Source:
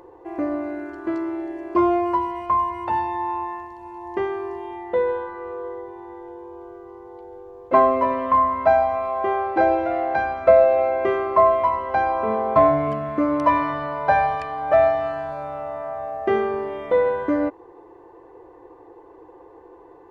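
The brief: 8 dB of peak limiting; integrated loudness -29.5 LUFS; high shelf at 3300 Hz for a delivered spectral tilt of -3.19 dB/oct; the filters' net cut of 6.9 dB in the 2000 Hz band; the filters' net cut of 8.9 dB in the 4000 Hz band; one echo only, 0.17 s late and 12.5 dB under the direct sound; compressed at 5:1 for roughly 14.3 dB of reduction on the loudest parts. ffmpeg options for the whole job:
-af "equalizer=f=2k:t=o:g=-6.5,highshelf=f=3.3k:g=-7,equalizer=f=4k:t=o:g=-4.5,acompressor=threshold=-26dB:ratio=5,alimiter=limit=-22.5dB:level=0:latency=1,aecho=1:1:170:0.237,volume=1.5dB"

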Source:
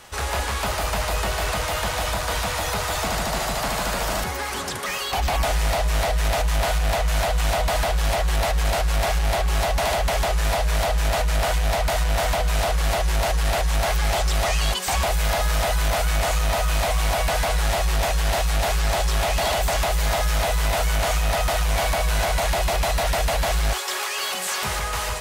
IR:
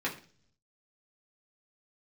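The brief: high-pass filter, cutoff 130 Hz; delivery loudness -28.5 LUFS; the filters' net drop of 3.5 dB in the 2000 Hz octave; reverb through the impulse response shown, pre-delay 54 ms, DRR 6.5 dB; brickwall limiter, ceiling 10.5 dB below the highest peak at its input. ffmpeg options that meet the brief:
-filter_complex "[0:a]highpass=130,equalizer=f=2k:t=o:g=-4.5,alimiter=level_in=0.5dB:limit=-24dB:level=0:latency=1,volume=-0.5dB,asplit=2[a][b];[1:a]atrim=start_sample=2205,adelay=54[c];[b][c]afir=irnorm=-1:irlink=0,volume=-13.5dB[d];[a][d]amix=inputs=2:normalize=0,volume=3.5dB"

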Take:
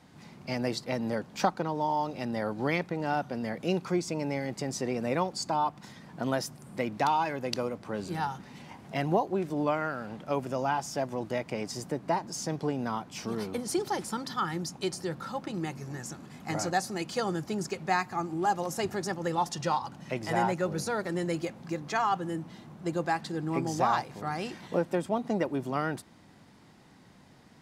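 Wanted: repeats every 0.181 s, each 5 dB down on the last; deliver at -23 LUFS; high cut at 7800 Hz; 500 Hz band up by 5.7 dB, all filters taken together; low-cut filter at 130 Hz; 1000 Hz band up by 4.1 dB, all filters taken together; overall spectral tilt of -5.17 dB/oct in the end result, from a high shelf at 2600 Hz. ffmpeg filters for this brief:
-af "highpass=130,lowpass=7.8k,equalizer=f=500:t=o:g=6.5,equalizer=f=1k:t=o:g=3.5,highshelf=f=2.6k:g=-5.5,aecho=1:1:181|362|543|724|905|1086|1267:0.562|0.315|0.176|0.0988|0.0553|0.031|0.0173,volume=3.5dB"

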